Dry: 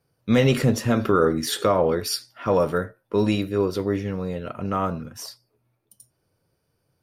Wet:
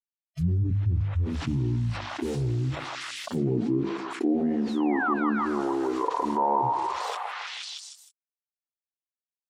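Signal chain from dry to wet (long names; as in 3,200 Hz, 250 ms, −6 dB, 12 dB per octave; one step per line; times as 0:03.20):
wrong playback speed 45 rpm record played at 33 rpm
sound drawn into the spectrogram fall, 0:04.38–0:05.14, 1,100–11,000 Hz −25 dBFS
low-pass filter sweep 120 Hz → 1,000 Hz, 0:03.03–0:04.95
bit reduction 8 bits
noise reduction from a noise print of the clip's start 27 dB
mains-hum notches 50/100/150/200 Hz
treble cut that deepens with the level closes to 2,400 Hz, closed at −20 dBFS
on a send: echo through a band-pass that steps 157 ms, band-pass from 1,000 Hz, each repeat 0.7 octaves, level −3 dB
on the sum: envelope flattener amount 70%
level −8 dB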